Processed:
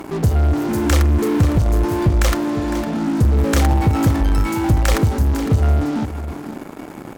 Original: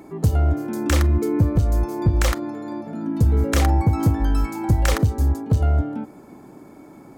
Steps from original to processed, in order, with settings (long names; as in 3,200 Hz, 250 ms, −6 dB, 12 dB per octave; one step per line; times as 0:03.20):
in parallel at −11 dB: fuzz pedal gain 40 dB, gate −43 dBFS
on the sum: single-tap delay 507 ms −12 dB